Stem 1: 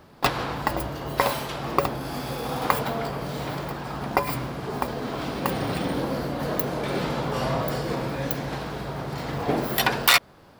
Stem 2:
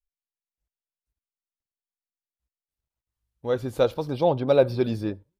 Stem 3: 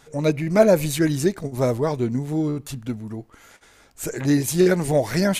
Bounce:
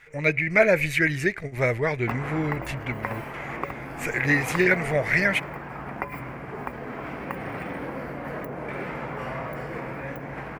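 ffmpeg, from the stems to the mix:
-filter_complex "[0:a]acrossover=split=370|1300[a][b][c];[a]acompressor=threshold=-31dB:ratio=4[d];[b]acompressor=threshold=-30dB:ratio=4[e];[c]acompressor=threshold=-33dB:ratio=4[f];[d][e][f]amix=inputs=3:normalize=0,adelay=1850,volume=-4dB[g];[2:a]dynaudnorm=f=200:g=11:m=3dB,equalizer=f=250:t=o:w=1:g=-9,equalizer=f=1k:t=o:w=1:g=-7,equalizer=f=2k:t=o:w=1:g=9,equalizer=f=4k:t=o:w=1:g=11,volume=-2dB[h];[g][h]amix=inputs=2:normalize=0,aeval=exprs='sgn(val(0))*max(abs(val(0))-0.00112,0)':c=same,highshelf=f=2.9k:t=q:w=3:g=-10"

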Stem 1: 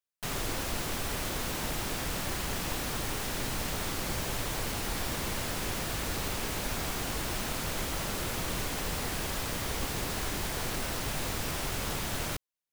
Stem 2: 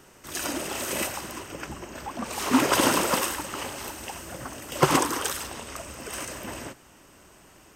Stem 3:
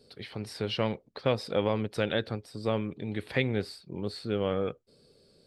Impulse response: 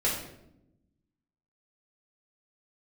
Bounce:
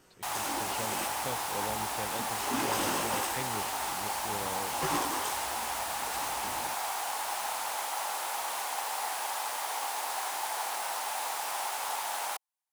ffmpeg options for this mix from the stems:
-filter_complex "[0:a]highpass=f=830:t=q:w=4.9,equalizer=f=9.9k:w=1.1:g=5.5,volume=-3dB[a];[1:a]asoftclip=type=hard:threshold=-19dB,flanger=delay=17:depth=3.9:speed=1.6,volume=-5.5dB[b];[2:a]volume=-12.5dB[c];[a][b][c]amix=inputs=3:normalize=0"

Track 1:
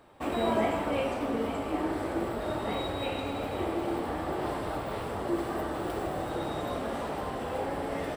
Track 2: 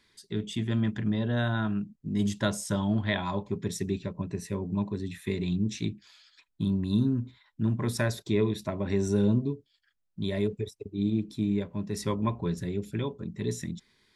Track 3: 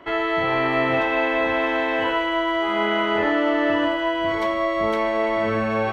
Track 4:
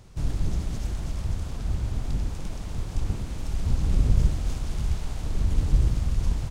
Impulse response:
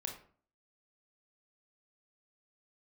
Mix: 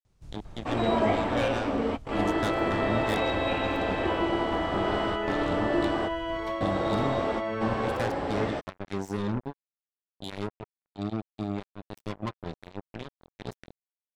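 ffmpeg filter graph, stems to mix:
-filter_complex "[0:a]lowpass=f=6.7k:w=0.5412,lowpass=f=6.7k:w=1.3066,adelay=450,volume=2.5dB[a];[1:a]acrusher=bits=3:mix=0:aa=0.5,volume=-6dB,asplit=2[b][c];[2:a]bandreject=f=2.1k:w=8.2,adelay=2050,volume=-9dB[d];[3:a]alimiter=limit=-18dB:level=0:latency=1:release=298,adelay=50,volume=-18dB[e];[c]apad=whole_len=379827[f];[a][f]sidechaingate=range=-33dB:threshold=-59dB:ratio=16:detection=peak[g];[g][b][d][e]amix=inputs=4:normalize=0"

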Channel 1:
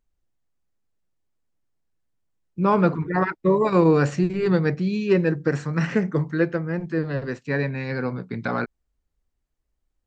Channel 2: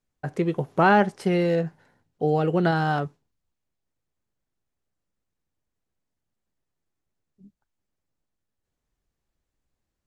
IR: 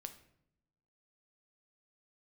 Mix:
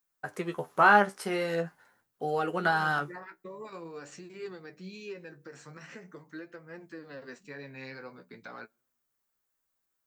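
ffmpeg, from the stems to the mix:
-filter_complex "[0:a]acompressor=threshold=-20dB:ratio=6,highpass=f=150:p=1,alimiter=limit=-21.5dB:level=0:latency=1:release=367,volume=-7dB,asplit=2[a][b];[b]volume=-18.5dB[c];[1:a]equalizer=f=1.3k:t=o:w=1.1:g=9.5,volume=-3dB[d];[2:a]atrim=start_sample=2205[e];[c][e]afir=irnorm=-1:irlink=0[f];[a][d][f]amix=inputs=3:normalize=0,aemphasis=mode=production:type=bsi,flanger=delay=7.5:depth=8.1:regen=40:speed=0.45:shape=triangular"

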